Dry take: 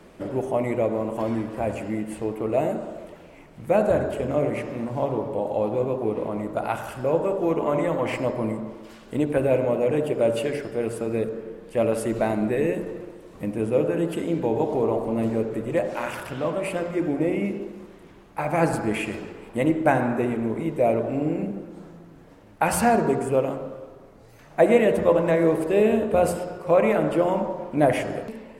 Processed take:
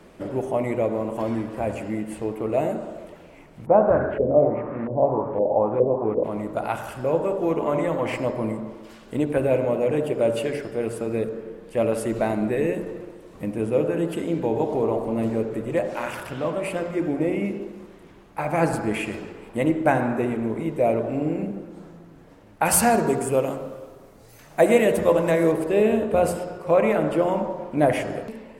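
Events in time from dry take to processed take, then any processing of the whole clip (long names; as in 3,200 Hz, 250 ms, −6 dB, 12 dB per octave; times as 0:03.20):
0:03.65–0:06.23: auto-filter low-pass saw up 0.94 Hz → 3.3 Hz 460–1,800 Hz
0:22.65–0:25.52: high-shelf EQ 4,900 Hz +11.5 dB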